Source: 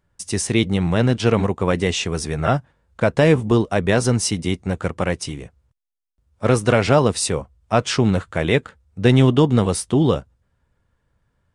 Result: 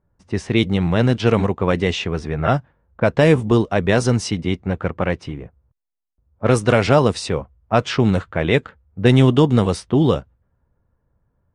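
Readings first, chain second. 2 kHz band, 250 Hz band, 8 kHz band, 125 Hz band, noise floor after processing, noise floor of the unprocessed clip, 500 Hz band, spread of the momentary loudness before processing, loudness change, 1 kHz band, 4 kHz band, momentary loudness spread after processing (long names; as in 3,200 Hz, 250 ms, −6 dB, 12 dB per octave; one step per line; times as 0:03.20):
+1.0 dB, +1.0 dB, −8.0 dB, +1.0 dB, −70 dBFS, −70 dBFS, +1.0 dB, 9 LU, +1.0 dB, +1.0 dB, −0.5 dB, 10 LU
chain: low-pass that shuts in the quiet parts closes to 1,000 Hz, open at −10.5 dBFS
floating-point word with a short mantissa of 8 bits
level +1 dB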